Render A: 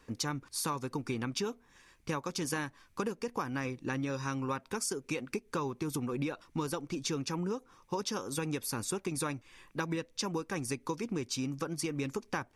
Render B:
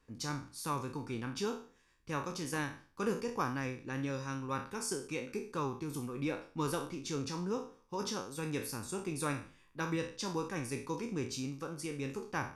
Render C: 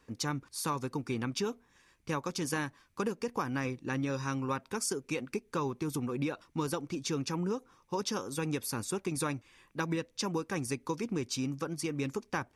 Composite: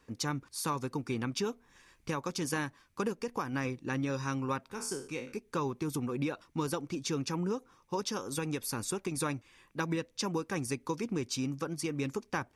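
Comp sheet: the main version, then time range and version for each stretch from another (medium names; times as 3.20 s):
C
1.51–2.18 s: from A
3.13–3.53 s: from A
4.70–5.37 s: from B
8.00–9.19 s: from A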